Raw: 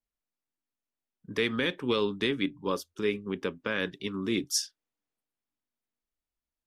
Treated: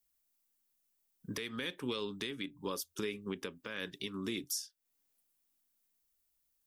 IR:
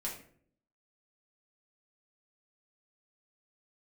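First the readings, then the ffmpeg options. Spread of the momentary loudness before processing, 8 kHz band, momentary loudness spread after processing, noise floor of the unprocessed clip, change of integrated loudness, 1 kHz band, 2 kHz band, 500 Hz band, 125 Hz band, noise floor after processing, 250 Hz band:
6 LU, -6.5 dB, 5 LU, under -85 dBFS, -9.0 dB, -9.5 dB, -10.0 dB, -11.0 dB, -8.0 dB, -79 dBFS, -9.5 dB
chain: -af "aemphasis=mode=production:type=75kf,acompressor=threshold=-37dB:ratio=3,alimiter=level_in=2.5dB:limit=-24dB:level=0:latency=1:release=269,volume=-2.5dB,volume=1dB"

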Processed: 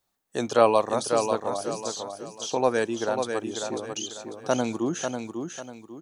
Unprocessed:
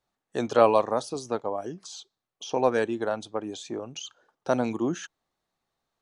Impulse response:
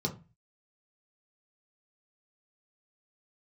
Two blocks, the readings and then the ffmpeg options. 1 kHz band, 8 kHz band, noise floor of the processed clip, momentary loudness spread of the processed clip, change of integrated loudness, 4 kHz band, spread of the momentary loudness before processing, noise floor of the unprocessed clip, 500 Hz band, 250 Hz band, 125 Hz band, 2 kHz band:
+1.5 dB, +8.5 dB, -77 dBFS, 14 LU, 0.0 dB, +5.0 dB, 20 LU, under -85 dBFS, +1.0 dB, +1.0 dB, +1.0 dB, +2.5 dB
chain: -af "aemphasis=mode=production:type=50kf,aecho=1:1:545|1090|1635|2180:0.501|0.17|0.0579|0.0197"

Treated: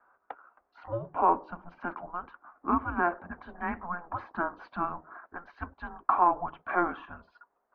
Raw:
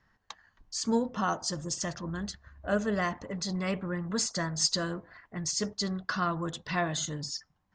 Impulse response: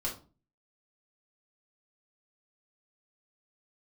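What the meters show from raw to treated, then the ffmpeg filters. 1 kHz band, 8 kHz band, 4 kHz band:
+8.0 dB, under -40 dB, under -25 dB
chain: -af "highpass=f=430:t=q:w=0.5412,highpass=f=430:t=q:w=1.307,lowpass=f=2.4k:t=q:w=0.5176,lowpass=f=2.4k:t=q:w=0.7071,lowpass=f=2.4k:t=q:w=1.932,afreqshift=-350,equalizer=f=125:t=o:w=1:g=-10,equalizer=f=250:t=o:w=1:g=3,equalizer=f=1k:t=o:w=1:g=11"

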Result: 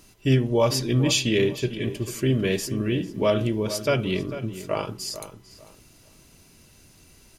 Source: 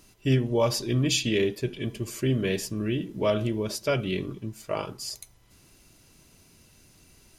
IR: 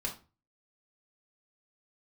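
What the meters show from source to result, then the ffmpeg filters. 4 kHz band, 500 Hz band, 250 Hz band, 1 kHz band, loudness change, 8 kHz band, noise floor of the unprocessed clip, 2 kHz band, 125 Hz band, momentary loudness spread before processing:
+3.0 dB, +3.0 dB, +3.5 dB, +3.0 dB, +3.0 dB, +3.0 dB, -58 dBFS, +3.0 dB, +3.5 dB, 11 LU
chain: -filter_complex "[0:a]asplit=2[a][b];[b]adelay=447,lowpass=f=2.6k:p=1,volume=-12dB,asplit=2[c][d];[d]adelay=447,lowpass=f=2.6k:p=1,volume=0.26,asplit=2[e][f];[f]adelay=447,lowpass=f=2.6k:p=1,volume=0.26[g];[a][c][e][g]amix=inputs=4:normalize=0,volume=3dB"

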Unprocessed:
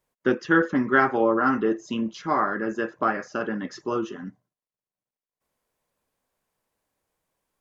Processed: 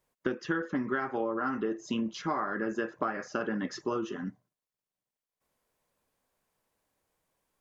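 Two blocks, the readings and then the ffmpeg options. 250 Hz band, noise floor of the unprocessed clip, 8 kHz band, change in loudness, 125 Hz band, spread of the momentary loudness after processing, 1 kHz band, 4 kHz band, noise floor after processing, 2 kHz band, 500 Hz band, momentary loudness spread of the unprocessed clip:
-7.5 dB, under -85 dBFS, n/a, -9.0 dB, -6.0 dB, 4 LU, -9.5 dB, -3.5 dB, under -85 dBFS, -10.5 dB, -8.5 dB, 10 LU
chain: -af "acompressor=threshold=-27dB:ratio=16"

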